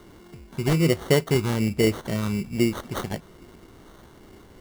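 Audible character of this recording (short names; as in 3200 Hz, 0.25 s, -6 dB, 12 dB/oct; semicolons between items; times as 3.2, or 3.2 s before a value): phasing stages 2, 1.2 Hz, lowest notch 590–4300 Hz; aliases and images of a low sample rate 2500 Hz, jitter 0%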